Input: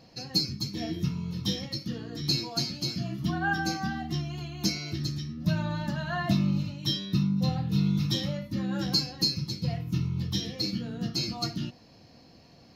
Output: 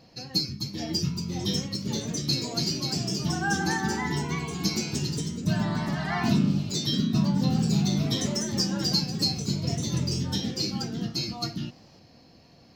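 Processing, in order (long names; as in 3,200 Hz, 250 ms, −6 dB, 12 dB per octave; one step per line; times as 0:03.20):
delay with pitch and tempo change per echo 630 ms, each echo +2 semitones, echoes 3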